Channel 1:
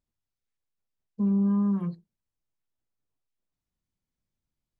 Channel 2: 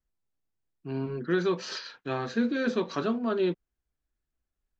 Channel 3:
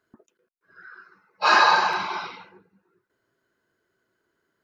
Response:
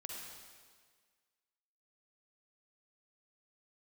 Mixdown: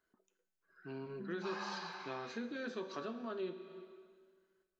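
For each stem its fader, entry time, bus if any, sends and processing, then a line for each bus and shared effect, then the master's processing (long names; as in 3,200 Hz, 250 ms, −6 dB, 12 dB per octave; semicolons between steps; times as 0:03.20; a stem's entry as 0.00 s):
−7.0 dB, 0.00 s, no send, no processing
+1.5 dB, 0.00 s, send −5.5 dB, no processing
+0.5 dB, 0.00 s, no send, every ending faded ahead of time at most 280 dB per second; automatic ducking −11 dB, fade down 0.85 s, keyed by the first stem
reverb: on, RT60 1.7 s, pre-delay 42 ms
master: low-shelf EQ 160 Hz −11.5 dB; tuned comb filter 190 Hz, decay 0.81 s, harmonics all, mix 70%; downward compressor 2 to 1, threshold −44 dBFS, peak gain reduction 9.5 dB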